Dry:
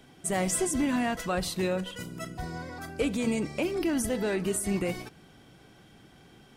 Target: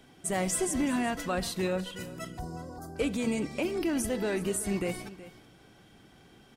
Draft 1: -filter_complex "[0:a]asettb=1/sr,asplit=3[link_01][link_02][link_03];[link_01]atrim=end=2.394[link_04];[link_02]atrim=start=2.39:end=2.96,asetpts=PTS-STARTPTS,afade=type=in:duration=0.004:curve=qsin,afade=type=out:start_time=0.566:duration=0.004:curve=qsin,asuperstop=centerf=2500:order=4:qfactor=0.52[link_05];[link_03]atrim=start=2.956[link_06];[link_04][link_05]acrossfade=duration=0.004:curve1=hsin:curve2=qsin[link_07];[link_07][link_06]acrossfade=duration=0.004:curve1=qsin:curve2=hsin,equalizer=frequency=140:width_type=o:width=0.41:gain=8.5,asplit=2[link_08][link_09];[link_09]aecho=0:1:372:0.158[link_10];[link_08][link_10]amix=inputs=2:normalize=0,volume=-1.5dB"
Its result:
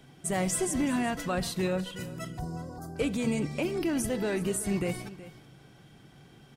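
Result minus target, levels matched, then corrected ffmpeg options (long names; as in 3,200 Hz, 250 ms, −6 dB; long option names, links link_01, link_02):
125 Hz band +3.0 dB
-filter_complex "[0:a]asettb=1/sr,asplit=3[link_01][link_02][link_03];[link_01]atrim=end=2.394[link_04];[link_02]atrim=start=2.39:end=2.96,asetpts=PTS-STARTPTS,afade=type=in:duration=0.004:curve=qsin,afade=type=out:start_time=0.566:duration=0.004:curve=qsin,asuperstop=centerf=2500:order=4:qfactor=0.52[link_05];[link_03]atrim=start=2.956[link_06];[link_04][link_05]acrossfade=duration=0.004:curve1=hsin:curve2=qsin[link_07];[link_07][link_06]acrossfade=duration=0.004:curve1=qsin:curve2=hsin,equalizer=frequency=140:width_type=o:width=0.41:gain=-2.5,asplit=2[link_08][link_09];[link_09]aecho=0:1:372:0.158[link_10];[link_08][link_10]amix=inputs=2:normalize=0,volume=-1.5dB"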